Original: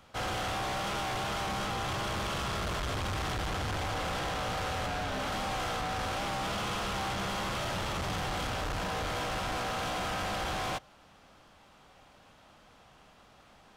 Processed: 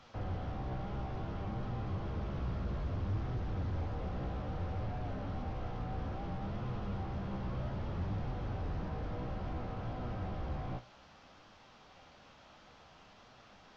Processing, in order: one-bit delta coder 32 kbps, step -60 dBFS; flange 0.6 Hz, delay 7.6 ms, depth 9.2 ms, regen +56%; trim +3.5 dB

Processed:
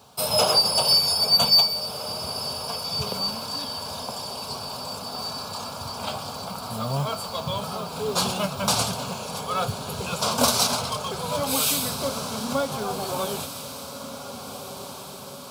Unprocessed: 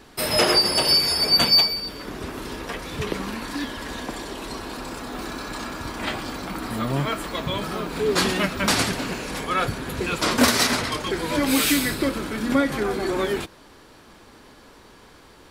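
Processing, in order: high-pass 88 Hz 24 dB/octave; static phaser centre 780 Hz, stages 4; companded quantiser 6-bit; on a send: echo that smears into a reverb 1703 ms, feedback 56%, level -11 dB; on the sum: trim +1.5 dB

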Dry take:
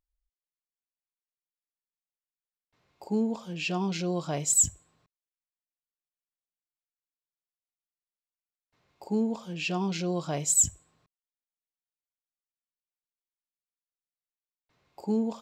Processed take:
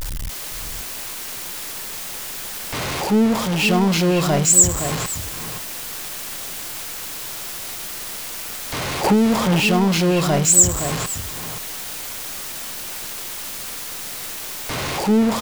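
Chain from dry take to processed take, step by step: jump at every zero crossing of -27.5 dBFS; echo from a far wall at 89 m, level -8 dB; 9.04–9.60 s: three bands compressed up and down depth 100%; trim +8.5 dB

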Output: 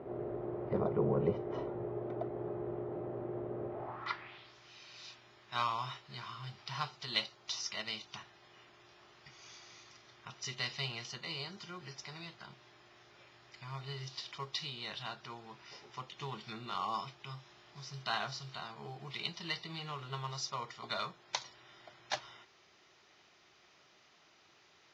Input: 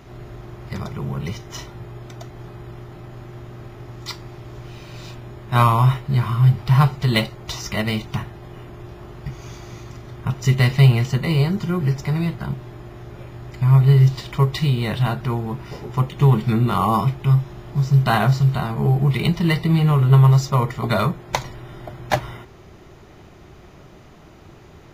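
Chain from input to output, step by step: dynamic bell 2.1 kHz, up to -5 dB, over -43 dBFS, Q 2.1; band-pass sweep 480 Hz -> 5.9 kHz, 3.69–4.56 s; distance through air 250 m; trim +8 dB

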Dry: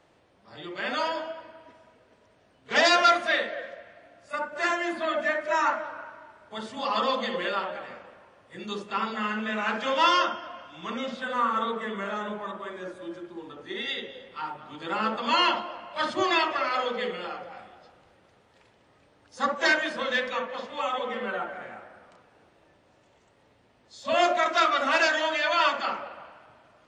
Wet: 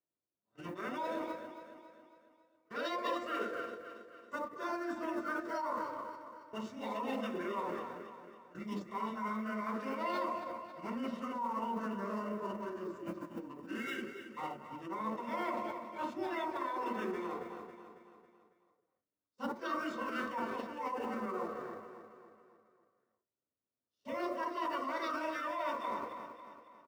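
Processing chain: companding laws mixed up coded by A; hum notches 60/120/180 Hz; gate -49 dBFS, range -26 dB; peaking EQ 3.7 kHz -9 dB 1.1 oct; reverse; compression 6:1, threshold -34 dBFS, peak gain reduction 16 dB; reverse; comb of notches 830 Hz; on a send: feedback delay 275 ms, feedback 50%, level -10 dB; on the sum: formant shift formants -4 st

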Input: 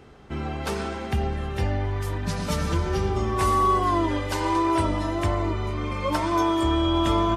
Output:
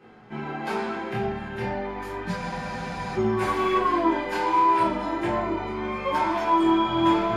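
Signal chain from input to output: peaking EQ 820 Hz +6 dB 1.9 oct; hard clipper -13.5 dBFS, distortion -21 dB; chorus 0.33 Hz, delay 18.5 ms, depth 7.5 ms; reverberation RT60 0.50 s, pre-delay 3 ms, DRR -5.5 dB; spectral freeze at 2.40 s, 0.78 s; trim -8.5 dB

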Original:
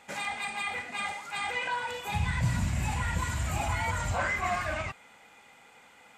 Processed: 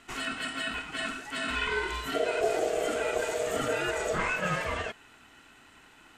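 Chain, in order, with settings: ring modulator 550 Hz; 1.43–2.09 s: doubling 50 ms -3 dB; trim +3 dB

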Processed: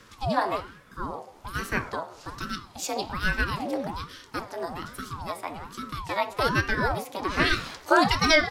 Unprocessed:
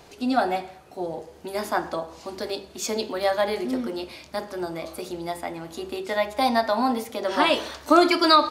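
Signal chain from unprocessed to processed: frequency shift +160 Hz; ring modulator with a swept carrier 450 Hz, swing 75%, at 1.2 Hz

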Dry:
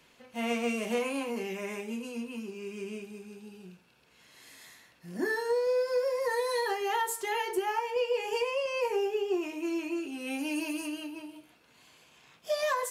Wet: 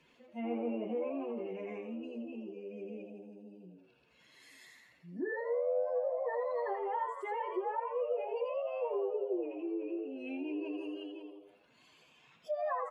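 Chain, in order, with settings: spectral contrast enhancement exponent 1.7; frequency-shifting echo 83 ms, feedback 39%, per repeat +98 Hz, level -6.5 dB; low-pass that closes with the level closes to 1.6 kHz, closed at -27.5 dBFS; trim -5.5 dB

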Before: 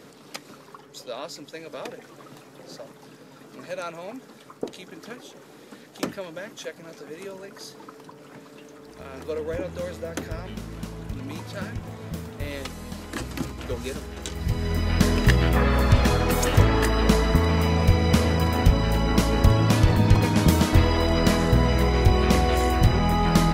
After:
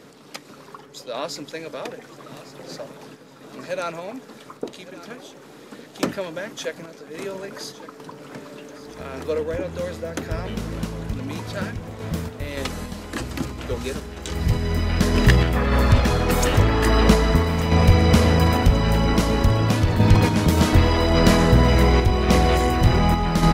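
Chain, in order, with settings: treble shelf 9.8 kHz -3.5 dB; in parallel at -3 dB: saturation -20 dBFS, distortion -8 dB; on the sum: random-step tremolo; feedback delay 1159 ms, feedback 56%, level -16.5 dB; trim +2.5 dB

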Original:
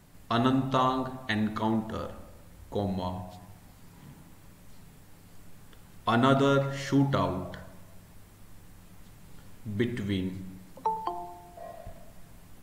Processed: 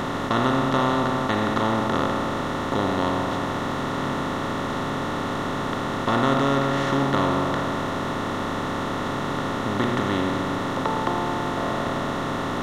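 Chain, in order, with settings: spectral levelling over time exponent 0.2; trim -3.5 dB

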